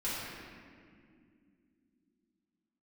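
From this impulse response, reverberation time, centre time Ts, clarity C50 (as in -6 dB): 2.4 s, 0.14 s, -3.0 dB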